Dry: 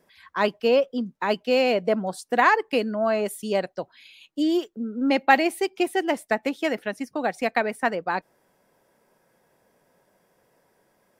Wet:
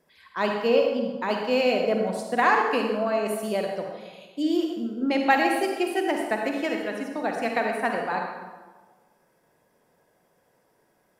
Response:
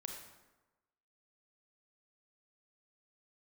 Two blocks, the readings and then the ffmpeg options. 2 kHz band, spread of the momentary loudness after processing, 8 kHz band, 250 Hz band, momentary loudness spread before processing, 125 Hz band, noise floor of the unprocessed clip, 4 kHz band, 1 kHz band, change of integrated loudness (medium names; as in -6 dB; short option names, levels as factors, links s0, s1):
-1.5 dB, 10 LU, -1.5 dB, -0.5 dB, 11 LU, -0.5 dB, -67 dBFS, -1.5 dB, -1.0 dB, -1.0 dB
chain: -filter_complex "[1:a]atrim=start_sample=2205,asetrate=35280,aresample=44100[s0];[0:a][s0]afir=irnorm=-1:irlink=0"